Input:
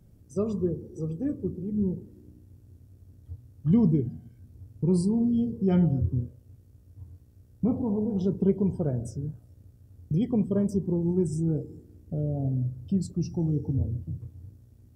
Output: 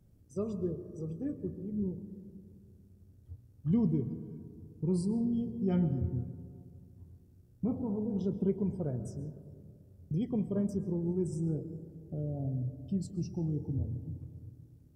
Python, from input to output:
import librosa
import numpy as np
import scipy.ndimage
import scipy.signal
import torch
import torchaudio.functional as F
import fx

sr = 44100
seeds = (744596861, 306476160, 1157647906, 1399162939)

y = fx.rev_freeverb(x, sr, rt60_s=2.3, hf_ratio=0.25, predelay_ms=90, drr_db=13.0)
y = F.gain(torch.from_numpy(y), -7.0).numpy()